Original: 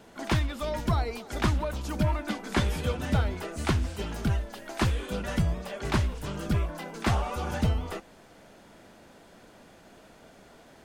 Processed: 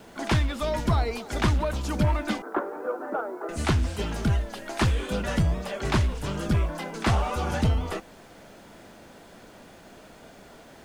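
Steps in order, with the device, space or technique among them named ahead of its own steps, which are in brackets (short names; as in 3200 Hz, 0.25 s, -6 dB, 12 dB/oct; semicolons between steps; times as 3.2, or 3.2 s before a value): 2.42–3.49 elliptic band-pass 320–1400 Hz, stop band 50 dB; compact cassette (soft clip -18.5 dBFS, distortion -18 dB; LPF 12000 Hz 12 dB/oct; wow and flutter 26 cents; white noise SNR 40 dB); gain +4.5 dB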